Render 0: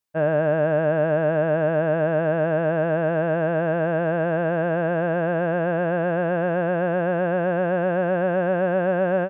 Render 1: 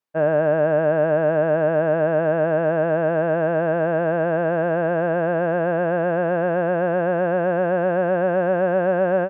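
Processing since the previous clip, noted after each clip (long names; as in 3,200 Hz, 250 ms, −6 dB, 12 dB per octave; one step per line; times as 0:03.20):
high-pass filter 230 Hz 6 dB per octave
high-shelf EQ 3,000 Hz −12 dB
level +3.5 dB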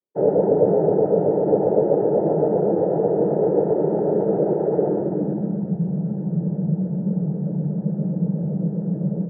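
cochlear-implant simulation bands 12
low-pass filter sweep 410 Hz → 180 Hz, 0:04.82–0:05.79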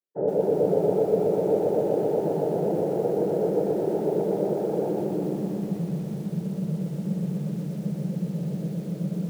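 feedback echo at a low word length 122 ms, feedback 80%, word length 7 bits, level −6.5 dB
level −7 dB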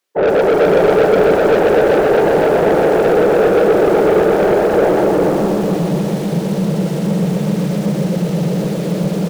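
mid-hump overdrive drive 25 dB, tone 5,100 Hz, clips at −9.5 dBFS
single-tap delay 410 ms −6.5 dB
level +4.5 dB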